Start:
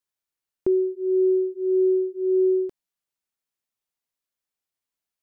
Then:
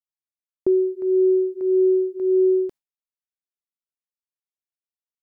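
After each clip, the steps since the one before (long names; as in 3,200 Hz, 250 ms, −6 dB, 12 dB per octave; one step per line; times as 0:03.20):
noise gate with hold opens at −25 dBFS
level +2.5 dB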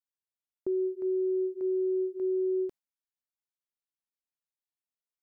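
brickwall limiter −18.5 dBFS, peak gain reduction 5.5 dB
level −6.5 dB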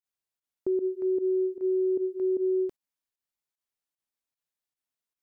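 fake sidechain pumping 152 BPM, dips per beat 1, −18 dB, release 82 ms
level +3 dB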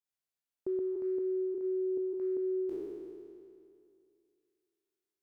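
peak hold with a decay on every bin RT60 2.41 s
level −7 dB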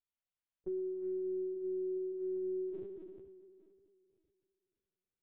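linear-prediction vocoder at 8 kHz pitch kept
level −4.5 dB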